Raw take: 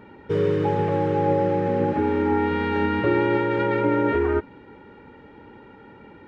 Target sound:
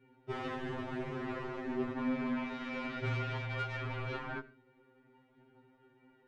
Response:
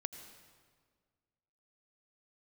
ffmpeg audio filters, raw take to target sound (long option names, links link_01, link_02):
-filter_complex "[0:a]adynamicequalizer=threshold=0.01:dfrequency=900:dqfactor=1.5:tfrequency=900:tqfactor=1.5:attack=5:release=100:ratio=0.375:range=4:mode=cutabove:tftype=bell,aeval=exprs='0.282*(cos(1*acos(clip(val(0)/0.282,-1,1)))-cos(1*PI/2))+0.0282*(cos(3*acos(clip(val(0)/0.282,-1,1)))-cos(3*PI/2))+0.0178*(cos(7*acos(clip(val(0)/0.282,-1,1)))-cos(7*PI/2))':channel_layout=same,flanger=delay=7.1:depth=4.7:regen=61:speed=0.91:shape=triangular,asplit=2[link_01][link_02];[1:a]atrim=start_sample=2205,atrim=end_sample=6174[link_03];[link_02][link_03]afir=irnorm=-1:irlink=0,volume=-1dB[link_04];[link_01][link_04]amix=inputs=2:normalize=0,afftfilt=real='re*2.45*eq(mod(b,6),0)':imag='im*2.45*eq(mod(b,6),0)':win_size=2048:overlap=0.75,volume=-5dB"